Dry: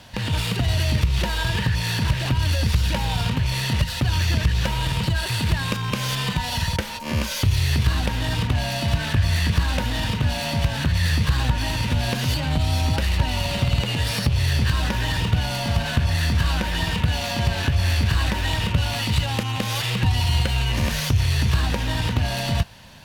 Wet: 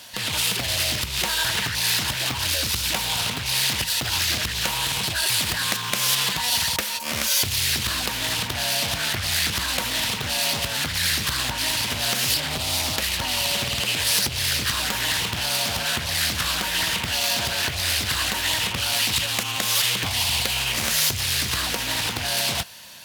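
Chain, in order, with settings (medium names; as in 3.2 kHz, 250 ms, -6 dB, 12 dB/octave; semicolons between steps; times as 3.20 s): RIAA curve recording; band-stop 820 Hz, Q 12; loudspeaker Doppler distortion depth 0.88 ms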